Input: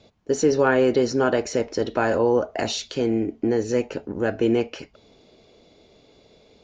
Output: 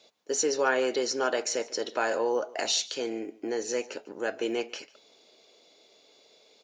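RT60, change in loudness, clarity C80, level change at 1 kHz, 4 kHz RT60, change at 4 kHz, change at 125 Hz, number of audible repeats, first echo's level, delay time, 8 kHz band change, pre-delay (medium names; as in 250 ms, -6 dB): no reverb, -7.0 dB, no reverb, -5.0 dB, no reverb, +1.0 dB, under -25 dB, 1, -21.0 dB, 146 ms, no reading, no reverb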